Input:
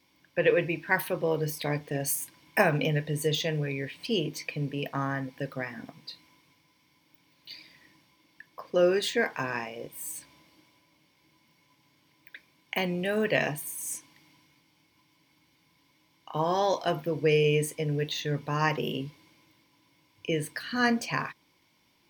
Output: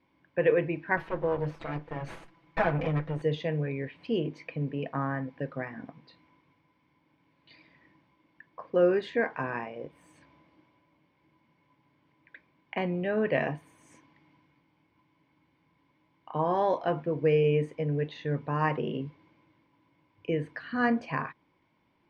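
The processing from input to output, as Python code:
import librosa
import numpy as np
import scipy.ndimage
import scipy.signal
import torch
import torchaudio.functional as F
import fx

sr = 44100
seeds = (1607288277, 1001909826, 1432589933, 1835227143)

y = fx.lower_of_two(x, sr, delay_ms=6.0, at=(0.97, 3.22))
y = scipy.signal.sosfilt(scipy.signal.butter(2, 1700.0, 'lowpass', fs=sr, output='sos'), y)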